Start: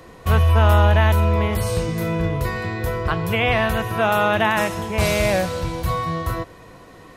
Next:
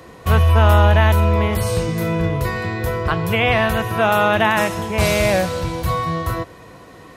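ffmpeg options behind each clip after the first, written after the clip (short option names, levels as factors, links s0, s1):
-af "highpass=51,volume=1.33"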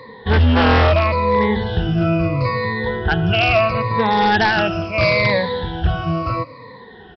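-af "afftfilt=real='re*pow(10,22/40*sin(2*PI*(0.98*log(max(b,1)*sr/1024/100)/log(2)-(-0.75)*(pts-256)/sr)))':imag='im*pow(10,22/40*sin(2*PI*(0.98*log(max(b,1)*sr/1024/100)/log(2)-(-0.75)*(pts-256)/sr)))':win_size=1024:overlap=0.75,aresample=11025,aeval=exprs='0.562*(abs(mod(val(0)/0.562+3,4)-2)-1)':c=same,aresample=44100,volume=0.708"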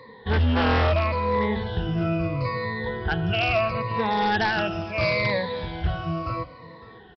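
-af "aecho=1:1:556:0.0944,volume=0.422"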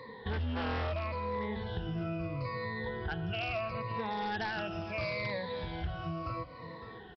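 -af "acompressor=threshold=0.0178:ratio=3,volume=0.841"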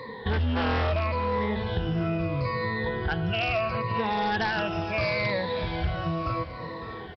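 -af "aecho=1:1:626|1252|1878|2504:0.178|0.0711|0.0285|0.0114,volume=2.66"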